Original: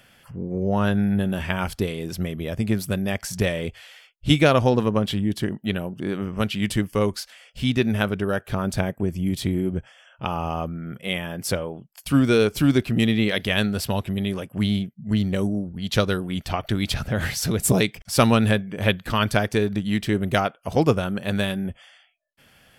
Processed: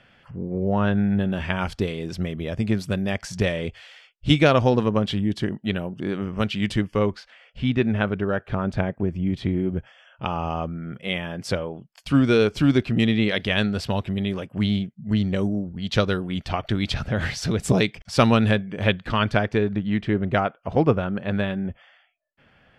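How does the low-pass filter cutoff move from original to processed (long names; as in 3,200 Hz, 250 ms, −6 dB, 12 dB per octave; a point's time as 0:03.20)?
0:00.99 3,200 Hz
0:01.64 5,800 Hz
0:06.65 5,800 Hz
0:07.21 2,600 Hz
0:09.39 2,600 Hz
0:10.25 5,100 Hz
0:18.75 5,100 Hz
0:19.81 2,300 Hz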